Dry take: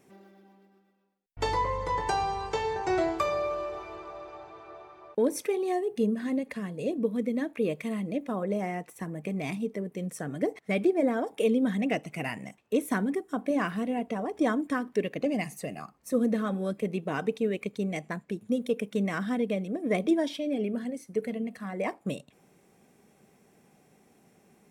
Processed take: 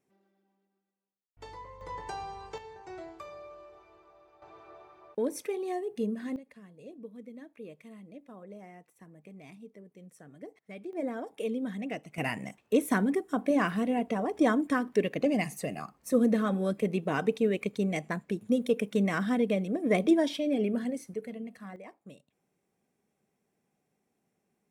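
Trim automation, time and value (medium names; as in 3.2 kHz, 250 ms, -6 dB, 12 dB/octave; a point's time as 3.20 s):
-18 dB
from 1.81 s -10.5 dB
from 2.58 s -17 dB
from 4.42 s -5 dB
from 6.36 s -17 dB
from 10.93 s -8 dB
from 12.18 s +1.5 dB
from 21.14 s -7 dB
from 21.76 s -17 dB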